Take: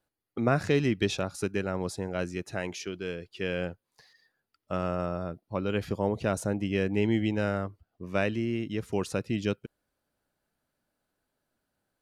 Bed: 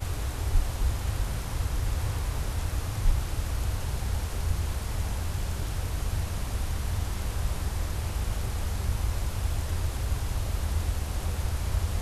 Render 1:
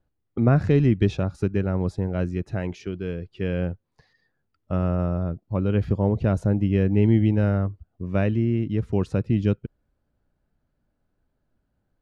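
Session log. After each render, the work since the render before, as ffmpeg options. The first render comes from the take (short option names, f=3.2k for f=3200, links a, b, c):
-af "aemphasis=mode=reproduction:type=riaa"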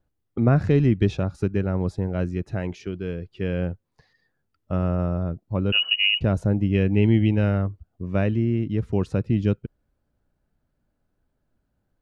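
-filter_complex "[0:a]asettb=1/sr,asplit=3[a][b][c];[a]atrim=end=5.724[d];[b]atrim=start=5.72:end=6.21,asetpts=PTS-STARTPTS,afade=t=in:d=0.004:c=qsin,afade=t=out:st=0.486:d=0.004:c=qsin,lowpass=f=2.6k:t=q:w=0.5098,lowpass=f=2.6k:t=q:w=0.6013,lowpass=f=2.6k:t=q:w=0.9,lowpass=f=2.6k:t=q:w=2.563,afreqshift=-3000[e];[c]atrim=start=6.206[f];[d][e]acrossfade=d=0.004:c1=hsin:c2=qsin[g];[g][f]acrossfade=d=0.004:c1=qsin:c2=hsin,asettb=1/sr,asplit=3[h][i][j];[h]atrim=end=6.744[k];[i]atrim=start=6.74:end=7.62,asetpts=PTS-STARTPTS,afade=t=in:d=0.004:c=qsin,afade=t=out:st=0.876:d=0.004:c=qsin,equalizer=f=2.7k:t=o:w=0.77:g=8[l];[j]atrim=start=7.616[m];[k][l]acrossfade=d=0.004:c1=hsin:c2=qsin[n];[n][m]acrossfade=d=0.004:c1=qsin:c2=hsin"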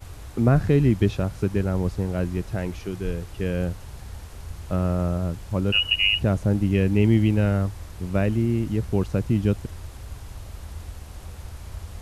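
-filter_complex "[1:a]volume=-8.5dB[a];[0:a][a]amix=inputs=2:normalize=0"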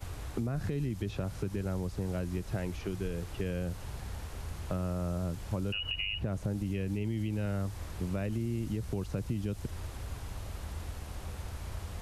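-filter_complex "[0:a]alimiter=limit=-17.5dB:level=0:latency=1:release=107,acrossover=split=120|3500[a][b][c];[a]acompressor=threshold=-38dB:ratio=4[d];[b]acompressor=threshold=-34dB:ratio=4[e];[c]acompressor=threshold=-54dB:ratio=4[f];[d][e][f]amix=inputs=3:normalize=0"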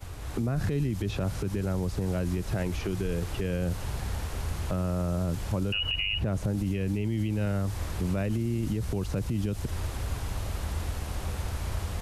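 -af "dynaudnorm=f=200:g=3:m=8dB,alimiter=limit=-20.5dB:level=0:latency=1:release=33"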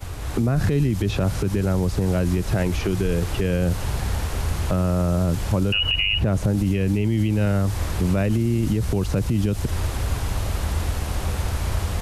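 -af "volume=8dB"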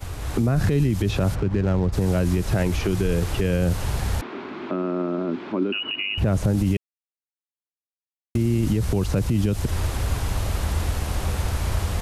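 -filter_complex "[0:a]asplit=3[a][b][c];[a]afade=t=out:st=1.34:d=0.02[d];[b]adynamicsmooth=sensitivity=4:basefreq=850,afade=t=in:st=1.34:d=0.02,afade=t=out:st=1.92:d=0.02[e];[c]afade=t=in:st=1.92:d=0.02[f];[d][e][f]amix=inputs=3:normalize=0,asettb=1/sr,asplit=3[g][h][i];[g]atrim=end=4.214[j];[h]atrim=start=4.21:end=6.18,asetpts=PTS-STARTPTS,afade=t=in:d=0.004:c=qsin,afade=t=out:st=1.966:d=0.004:c=qsin,highpass=f=240:w=0.5412,highpass=f=240:w=1.3066,equalizer=f=250:t=q:w=4:g=8,equalizer=f=360:t=q:w=4:g=9,equalizer=f=510:t=q:w=4:g=-9,equalizer=f=770:t=q:w=4:g=-5,equalizer=f=1.8k:t=q:w=4:g=-4,equalizer=f=2.9k:t=q:w=4:g=-5,lowpass=f=3.1k:w=0.5412,lowpass=f=3.1k:w=1.3066[k];[i]atrim=start=6.176[l];[j][k]acrossfade=d=0.004:c1=hsin:c2=qsin[m];[m][l]acrossfade=d=0.004:c1=qsin:c2=hsin,asplit=3[n][o][p];[n]atrim=end=6.77,asetpts=PTS-STARTPTS,afade=t=out:st=6.766:d=0.004:c=hsin[q];[o]atrim=start=6.77:end=8.35,asetpts=PTS-STARTPTS,volume=0[r];[p]atrim=start=8.35,asetpts=PTS-STARTPTS,afade=t=in:d=0.004:c=hsin[s];[q][r][s]concat=n=3:v=0:a=1"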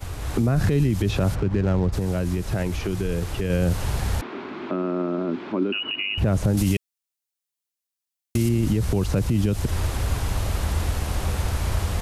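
-filter_complex "[0:a]asettb=1/sr,asplit=3[a][b][c];[a]atrim=end=6.574[d];[b]atrim=start=6.57:end=8.49,asetpts=PTS-STARTPTS,afade=t=in:d=0.004:c=qsin,afade=t=out:st=1.916:d=0.004:c=qsin,highshelf=f=2.7k:g=11[e];[c]atrim=start=8.486[f];[d][e]acrossfade=d=0.004:c1=hsin:c2=qsin[g];[g][f]acrossfade=d=0.004:c1=qsin:c2=hsin,asplit=3[h][i][j];[h]atrim=end=1.982[k];[i]atrim=start=1.978:end=3.502,asetpts=PTS-STARTPTS,volume=-3.5dB[l];[j]atrim=start=3.498[m];[k][l]acrossfade=d=0.004:c1=hsin:c2=hsin[n];[n][m]acrossfade=d=0.004:c1=hsin:c2=hsin"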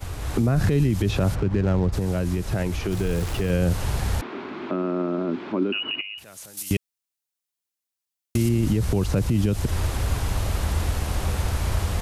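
-filter_complex "[0:a]asettb=1/sr,asplit=3[a][b][c];[a]atrim=end=2.914[d];[b]atrim=start=2.91:end=3.51,asetpts=PTS-STARTPTS,afade=t=in:d=0.004:c=qsin,afade=t=out:st=0.596:d=0.004:c=qsin,aeval=exprs='val(0)+0.5*0.0224*sgn(val(0))':c=same[e];[c]atrim=start=3.506[f];[d][e]acrossfade=d=0.004:c1=hsin:c2=qsin[g];[g][f]acrossfade=d=0.004:c1=qsin:c2=hsin,asettb=1/sr,asplit=3[h][i][j];[h]atrim=end=6.014[k];[i]atrim=start=6.01:end=6.71,asetpts=PTS-STARTPTS,afade=t=in:d=0.004:c=qsin,afade=t=out:st=0.696:d=0.004:c=qsin,aderivative[l];[j]atrim=start=6.706[m];[k][l]acrossfade=d=0.004:c1=hsin:c2=qsin[n];[n][m]acrossfade=d=0.004:c1=qsin:c2=hsin"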